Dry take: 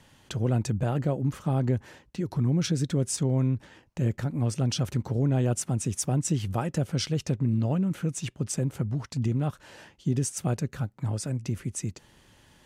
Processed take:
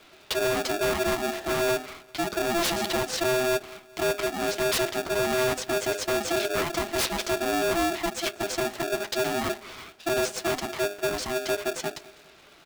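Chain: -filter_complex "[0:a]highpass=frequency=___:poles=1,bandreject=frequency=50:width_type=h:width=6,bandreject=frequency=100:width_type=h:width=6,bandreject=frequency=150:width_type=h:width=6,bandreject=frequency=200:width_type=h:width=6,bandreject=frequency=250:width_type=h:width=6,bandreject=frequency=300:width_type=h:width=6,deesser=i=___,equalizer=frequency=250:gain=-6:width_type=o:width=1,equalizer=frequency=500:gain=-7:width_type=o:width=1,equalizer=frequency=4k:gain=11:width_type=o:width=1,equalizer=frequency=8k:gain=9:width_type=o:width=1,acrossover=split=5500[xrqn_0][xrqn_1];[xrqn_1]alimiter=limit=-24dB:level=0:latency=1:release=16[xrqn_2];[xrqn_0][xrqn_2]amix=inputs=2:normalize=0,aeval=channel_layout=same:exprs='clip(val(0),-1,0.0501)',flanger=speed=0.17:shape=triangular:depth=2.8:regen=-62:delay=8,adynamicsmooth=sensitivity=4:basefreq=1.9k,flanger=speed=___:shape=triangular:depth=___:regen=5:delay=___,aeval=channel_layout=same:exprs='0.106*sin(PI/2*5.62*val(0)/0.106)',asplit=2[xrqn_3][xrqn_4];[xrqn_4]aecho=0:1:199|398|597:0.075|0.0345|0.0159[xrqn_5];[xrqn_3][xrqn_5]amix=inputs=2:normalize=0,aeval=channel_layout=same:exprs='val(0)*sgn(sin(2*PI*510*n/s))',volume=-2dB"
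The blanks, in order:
140, 0.5, 1.6, 8.1, 2.7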